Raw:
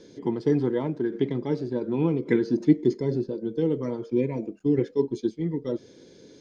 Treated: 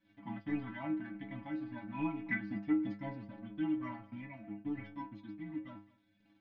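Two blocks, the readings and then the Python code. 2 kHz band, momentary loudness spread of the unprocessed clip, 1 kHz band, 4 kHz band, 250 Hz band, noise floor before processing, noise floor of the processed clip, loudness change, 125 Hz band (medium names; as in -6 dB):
-1.0 dB, 7 LU, -5.5 dB, no reading, -12.0 dB, -52 dBFS, -72 dBFS, -13.5 dB, -17.0 dB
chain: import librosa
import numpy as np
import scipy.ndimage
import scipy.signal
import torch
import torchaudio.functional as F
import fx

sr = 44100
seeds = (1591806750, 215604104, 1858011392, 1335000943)

y = scipy.signal.sosfilt(scipy.signal.ellip(3, 1.0, 40, [300.0, 600.0], 'bandstop', fs=sr, output='sos'), x)
y = fx.leveller(y, sr, passes=2)
y = fx.ladder_lowpass(y, sr, hz=2800.0, resonance_pct=45)
y = fx.stiff_resonator(y, sr, f0_hz=100.0, decay_s=0.43, stiffness=0.008)
y = y + 10.0 ** (-22.5 / 20.0) * np.pad(y, (int(214 * sr / 1000.0), 0))[:len(y)]
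y = fx.am_noise(y, sr, seeds[0], hz=5.7, depth_pct=65)
y = F.gain(torch.from_numpy(y), 8.5).numpy()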